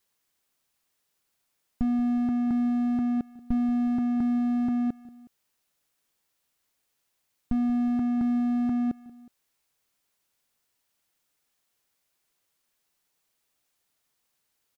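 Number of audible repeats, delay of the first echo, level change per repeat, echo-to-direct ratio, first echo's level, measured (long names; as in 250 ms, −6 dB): 2, 183 ms, −5.0 dB, −18.5 dB, −19.5 dB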